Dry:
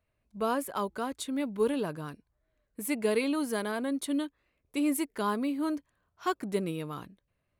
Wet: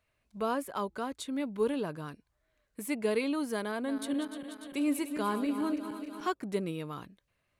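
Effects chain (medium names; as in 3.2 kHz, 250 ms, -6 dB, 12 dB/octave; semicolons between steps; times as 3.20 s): 3.69–6.28 s: backward echo that repeats 148 ms, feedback 75%, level -10 dB; treble shelf 11 kHz -9 dB; tape noise reduction on one side only encoder only; trim -2 dB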